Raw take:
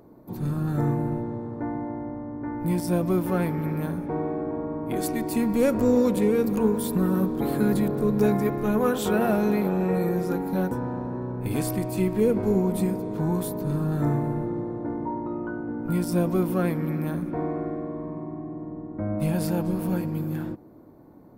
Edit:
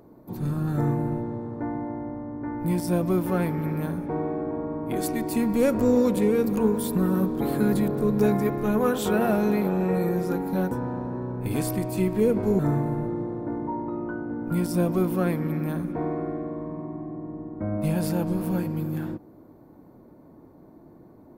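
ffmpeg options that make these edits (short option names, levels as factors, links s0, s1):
-filter_complex "[0:a]asplit=2[s0][s1];[s0]atrim=end=12.592[s2];[s1]atrim=start=13.968[s3];[s2][s3]acrossfade=d=0.004:c1=hsin:c2=hsin"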